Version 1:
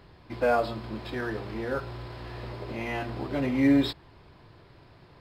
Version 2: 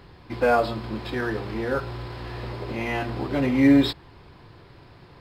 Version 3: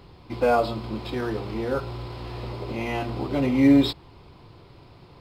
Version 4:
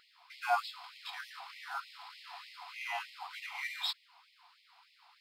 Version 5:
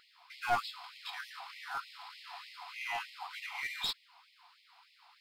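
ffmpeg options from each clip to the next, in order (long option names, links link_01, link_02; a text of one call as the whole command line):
ffmpeg -i in.wav -af "bandreject=frequency=630:width=12,volume=5dB" out.wav
ffmpeg -i in.wav -af "equalizer=frequency=1700:width=3.6:gain=-10" out.wav
ffmpeg -i in.wav -af "afftfilt=real='re*gte(b*sr/1024,660*pow(1900/660,0.5+0.5*sin(2*PI*3.3*pts/sr)))':imag='im*gte(b*sr/1024,660*pow(1900/660,0.5+0.5*sin(2*PI*3.3*pts/sr)))':win_size=1024:overlap=0.75,volume=-4.5dB" out.wav
ffmpeg -i in.wav -af "aeval=exprs='clip(val(0),-1,0.0251)':channel_layout=same,volume=1dB" out.wav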